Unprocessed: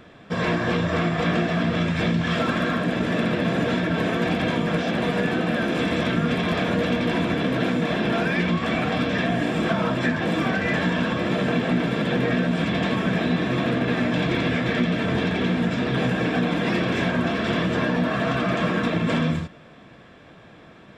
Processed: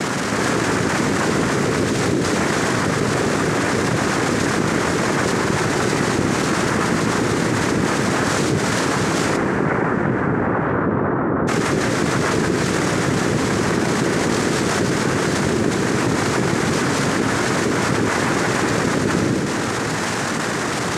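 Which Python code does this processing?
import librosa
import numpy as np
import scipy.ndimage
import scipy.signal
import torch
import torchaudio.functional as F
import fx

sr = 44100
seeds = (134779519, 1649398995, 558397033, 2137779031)

y = fx.delta_mod(x, sr, bps=16000, step_db=-26.5)
y = fx.noise_vocoder(y, sr, seeds[0], bands=3)
y = fx.lowpass(y, sr, hz=fx.line((9.36, 2200.0), (11.47, 1300.0)), slope=24, at=(9.36, 11.47), fade=0.02)
y = fx.rev_schroeder(y, sr, rt60_s=3.3, comb_ms=26, drr_db=13.0)
y = fx.env_flatten(y, sr, amount_pct=70)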